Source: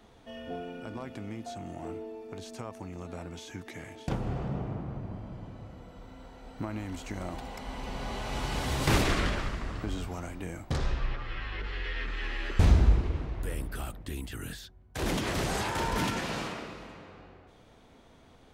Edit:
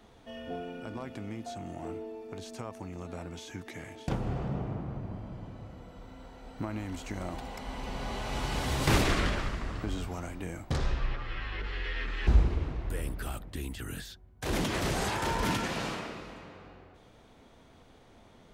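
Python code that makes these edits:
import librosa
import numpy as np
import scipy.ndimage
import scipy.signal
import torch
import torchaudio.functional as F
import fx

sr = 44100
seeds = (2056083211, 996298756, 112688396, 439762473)

y = fx.edit(x, sr, fx.cut(start_s=12.27, length_s=0.53), tone=tone)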